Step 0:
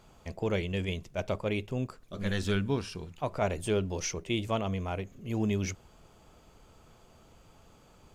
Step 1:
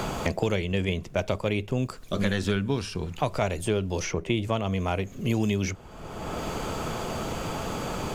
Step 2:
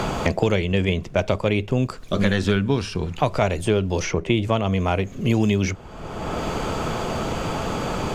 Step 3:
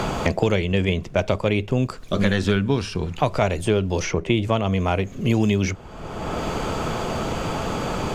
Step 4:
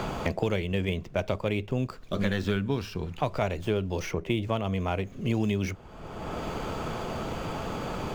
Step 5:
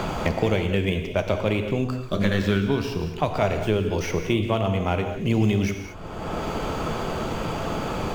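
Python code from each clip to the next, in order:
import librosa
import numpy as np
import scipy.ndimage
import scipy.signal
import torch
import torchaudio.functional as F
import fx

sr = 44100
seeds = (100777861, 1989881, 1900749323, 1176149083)

y1 = fx.band_squash(x, sr, depth_pct=100)
y1 = y1 * 10.0 ** (4.5 / 20.0)
y2 = fx.high_shelf(y1, sr, hz=9200.0, db=-11.5)
y2 = y2 * 10.0 ** (6.0 / 20.0)
y3 = y2
y4 = scipy.ndimage.median_filter(y3, 5, mode='constant')
y4 = y4 * 10.0 ** (-7.5 / 20.0)
y5 = fx.rev_gated(y4, sr, seeds[0], gate_ms=250, shape='flat', drr_db=5.5)
y5 = y5 * 10.0 ** (4.5 / 20.0)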